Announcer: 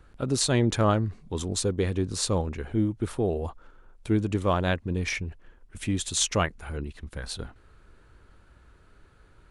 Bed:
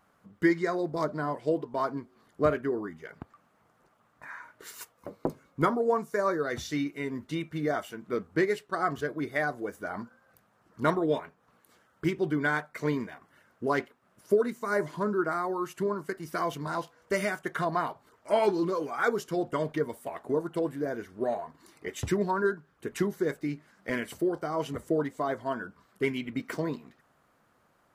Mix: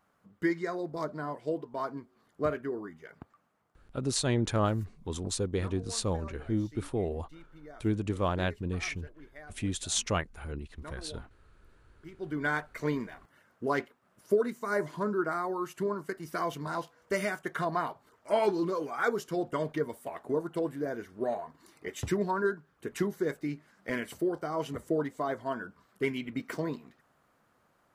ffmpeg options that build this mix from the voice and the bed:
-filter_complex "[0:a]adelay=3750,volume=-5dB[a];[1:a]volume=13.5dB,afade=t=out:st=3.22:d=0.83:silence=0.16788,afade=t=in:st=12.11:d=0.4:silence=0.11885[b];[a][b]amix=inputs=2:normalize=0"

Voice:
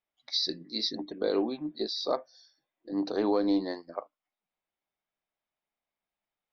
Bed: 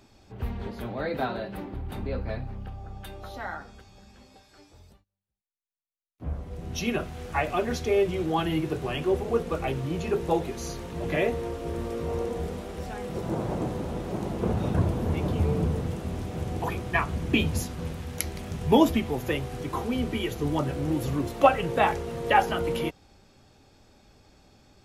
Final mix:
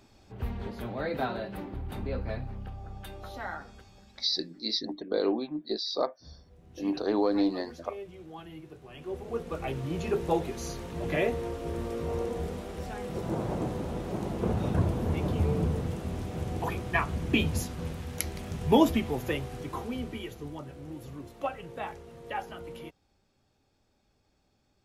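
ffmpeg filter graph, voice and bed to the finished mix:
-filter_complex "[0:a]adelay=3900,volume=0.5dB[a];[1:a]volume=14.5dB,afade=t=out:st=3.87:d=0.77:silence=0.149624,afade=t=in:st=8.89:d=1.15:silence=0.149624,afade=t=out:st=19.14:d=1.45:silence=0.237137[b];[a][b]amix=inputs=2:normalize=0"

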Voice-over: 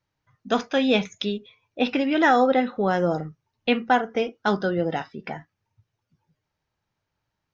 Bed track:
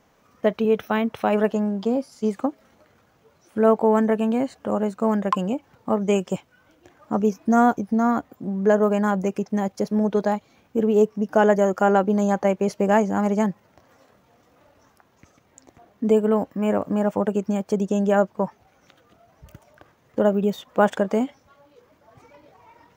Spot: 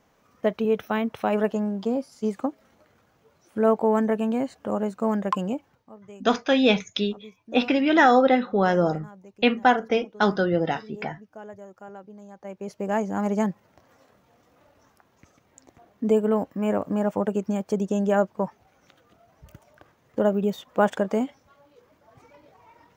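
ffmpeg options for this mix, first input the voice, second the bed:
-filter_complex "[0:a]adelay=5750,volume=1.5dB[a];[1:a]volume=19dB,afade=t=out:st=5.6:d=0.26:silence=0.0841395,afade=t=in:st=12.38:d=1.01:silence=0.0794328[b];[a][b]amix=inputs=2:normalize=0"

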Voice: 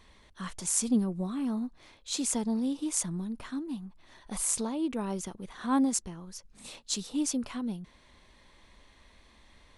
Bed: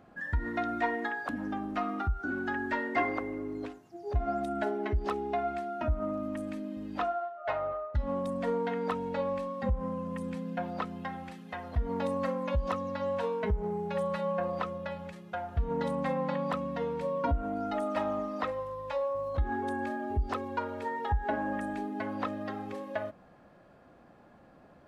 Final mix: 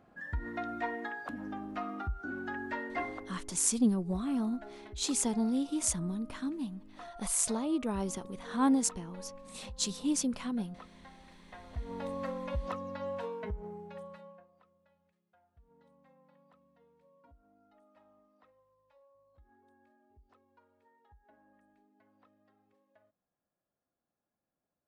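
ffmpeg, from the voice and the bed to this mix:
-filter_complex "[0:a]adelay=2900,volume=-0.5dB[a];[1:a]volume=6dB,afade=t=out:st=2.84:d=0.66:silence=0.266073,afade=t=in:st=11.18:d=1.11:silence=0.266073,afade=t=out:st=13.06:d=1.41:silence=0.0398107[b];[a][b]amix=inputs=2:normalize=0"

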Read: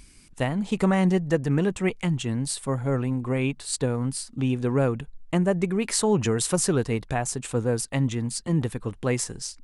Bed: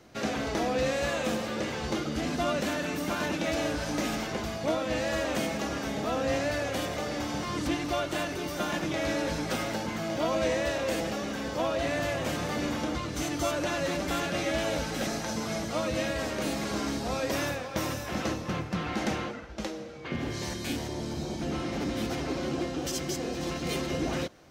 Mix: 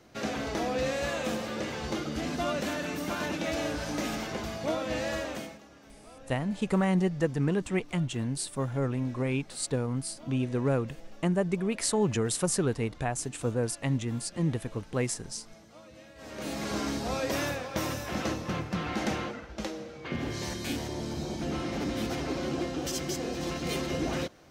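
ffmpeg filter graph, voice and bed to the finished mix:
-filter_complex "[0:a]adelay=5900,volume=-4.5dB[a];[1:a]volume=19dB,afade=t=out:st=5.09:d=0.52:silence=0.105925,afade=t=in:st=16.16:d=0.56:silence=0.0891251[b];[a][b]amix=inputs=2:normalize=0"

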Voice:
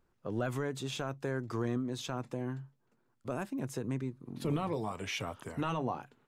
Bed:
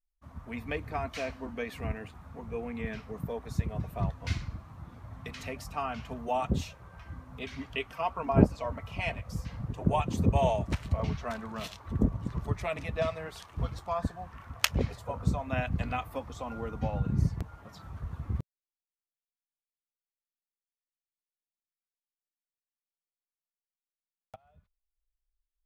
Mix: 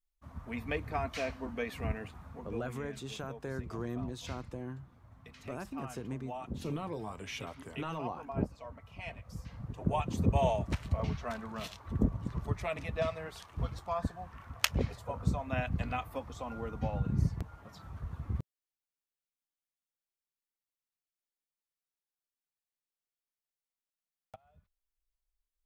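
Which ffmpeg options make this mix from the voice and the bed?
-filter_complex "[0:a]adelay=2200,volume=-4.5dB[a];[1:a]volume=9dB,afade=t=out:st=2.21:d=0.58:silence=0.266073,afade=t=in:st=8.91:d=1.43:silence=0.334965[b];[a][b]amix=inputs=2:normalize=0"

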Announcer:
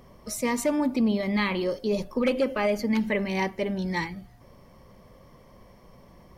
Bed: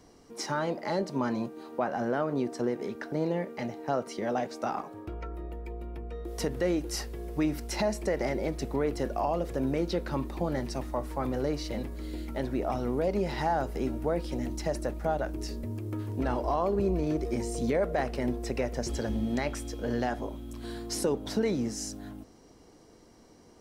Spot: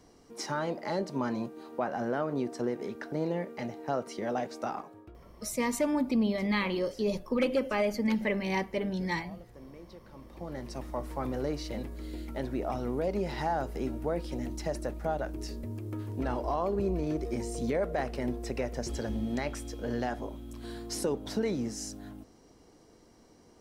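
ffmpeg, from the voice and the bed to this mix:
-filter_complex "[0:a]adelay=5150,volume=-3.5dB[a];[1:a]volume=16dB,afade=t=out:st=4.62:d=0.61:silence=0.11885,afade=t=in:st=10.16:d=0.88:silence=0.125893[b];[a][b]amix=inputs=2:normalize=0"

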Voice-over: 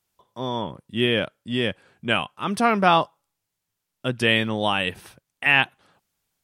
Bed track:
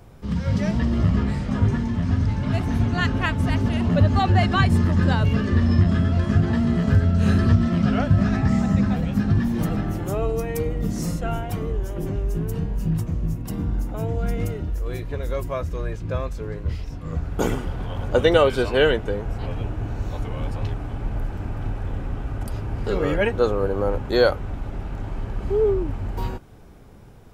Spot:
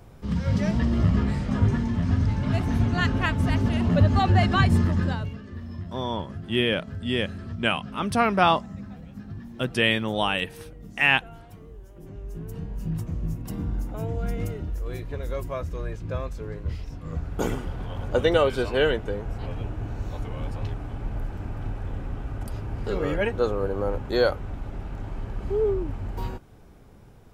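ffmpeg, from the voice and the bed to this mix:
-filter_complex "[0:a]adelay=5550,volume=-2dB[a];[1:a]volume=13dB,afade=t=out:st=4.77:d=0.6:silence=0.141254,afade=t=in:st=11.94:d=1.35:silence=0.188365[b];[a][b]amix=inputs=2:normalize=0"

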